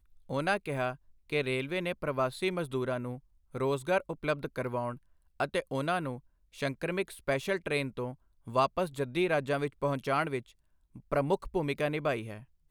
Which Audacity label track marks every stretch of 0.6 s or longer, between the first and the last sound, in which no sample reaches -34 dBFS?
10.390000	11.120000	silence